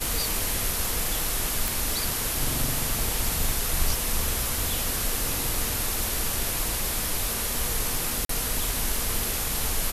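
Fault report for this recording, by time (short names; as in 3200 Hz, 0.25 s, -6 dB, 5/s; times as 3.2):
1.68 pop
8.25–8.29 gap 43 ms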